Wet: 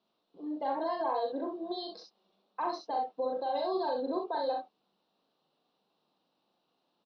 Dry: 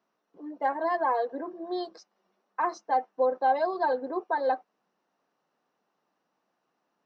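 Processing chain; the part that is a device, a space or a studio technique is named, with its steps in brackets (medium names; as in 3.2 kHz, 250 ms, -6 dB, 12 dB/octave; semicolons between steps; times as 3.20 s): over-bright horn tweeter (resonant high shelf 2.7 kHz +13 dB, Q 3; peak limiter -24 dBFS, peak gain reduction 9.5 dB); distance through air 400 m; early reflections 40 ms -4.5 dB, 66 ms -5.5 dB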